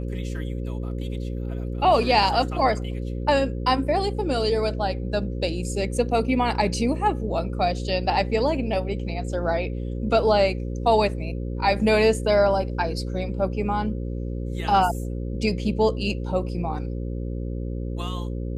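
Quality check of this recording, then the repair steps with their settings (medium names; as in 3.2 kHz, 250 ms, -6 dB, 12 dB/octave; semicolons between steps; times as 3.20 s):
buzz 60 Hz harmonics 9 -29 dBFS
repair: de-hum 60 Hz, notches 9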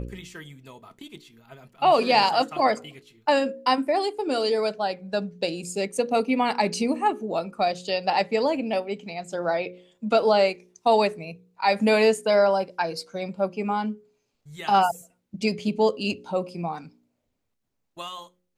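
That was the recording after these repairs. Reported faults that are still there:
nothing left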